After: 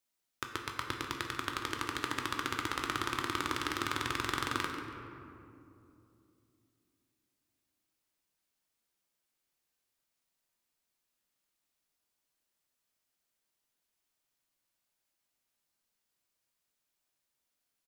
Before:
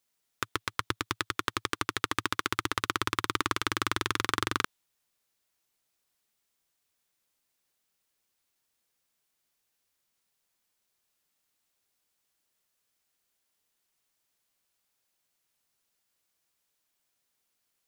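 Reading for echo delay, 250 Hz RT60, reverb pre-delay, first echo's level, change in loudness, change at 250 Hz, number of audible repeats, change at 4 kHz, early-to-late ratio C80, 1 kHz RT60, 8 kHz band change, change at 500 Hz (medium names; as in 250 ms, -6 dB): 141 ms, 3.6 s, 3 ms, -12.5 dB, -4.5 dB, -2.5 dB, 1, -5.0 dB, 4.5 dB, 2.5 s, -5.5 dB, -3.5 dB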